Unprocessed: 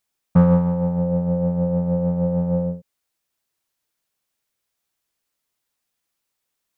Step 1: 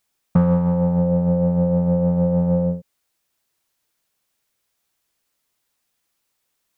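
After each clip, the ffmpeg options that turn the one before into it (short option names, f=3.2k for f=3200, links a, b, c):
-af "acompressor=threshold=-20dB:ratio=3,volume=5dB"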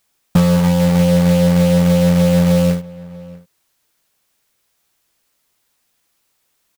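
-filter_complex "[0:a]asplit=2[a][b];[b]alimiter=limit=-16.5dB:level=0:latency=1:release=89,volume=2dB[c];[a][c]amix=inputs=2:normalize=0,acrusher=bits=3:mode=log:mix=0:aa=0.000001,asplit=2[d][e];[e]adelay=641.4,volume=-20dB,highshelf=f=4k:g=-14.4[f];[d][f]amix=inputs=2:normalize=0"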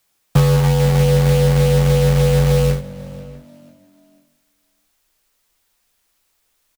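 -filter_complex "[0:a]asubboost=boost=4.5:cutoff=79,asplit=4[a][b][c][d];[b]adelay=490,afreqshift=49,volume=-22.5dB[e];[c]adelay=980,afreqshift=98,volume=-31.1dB[f];[d]adelay=1470,afreqshift=147,volume=-39.8dB[g];[a][e][f][g]amix=inputs=4:normalize=0,afreqshift=-32"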